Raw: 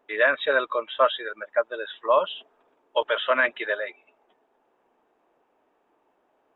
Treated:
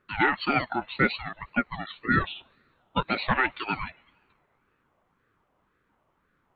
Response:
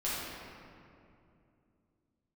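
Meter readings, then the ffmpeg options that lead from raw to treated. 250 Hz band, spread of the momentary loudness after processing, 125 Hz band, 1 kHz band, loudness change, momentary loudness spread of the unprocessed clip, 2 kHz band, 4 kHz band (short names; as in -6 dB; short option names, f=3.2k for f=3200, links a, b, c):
+12.5 dB, 11 LU, n/a, -1.5 dB, -2.5 dB, 11 LU, -2.0 dB, -4.0 dB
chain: -filter_complex "[0:a]asplit=2[a][b];[b]aderivative[c];[1:a]atrim=start_sample=2205,asetrate=35280,aresample=44100[d];[c][d]afir=irnorm=-1:irlink=0,volume=-24.5dB[e];[a][e]amix=inputs=2:normalize=0,aeval=exprs='val(0)*sin(2*PI*540*n/s+540*0.55/1.9*sin(2*PI*1.9*n/s))':c=same"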